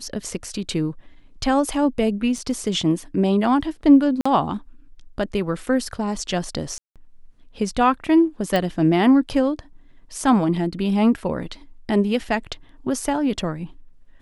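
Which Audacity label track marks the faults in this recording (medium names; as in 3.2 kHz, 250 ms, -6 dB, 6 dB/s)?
2.380000	2.380000	dropout 2.5 ms
4.210000	4.250000	dropout 45 ms
6.780000	6.960000	dropout 177 ms
8.560000	8.560000	pop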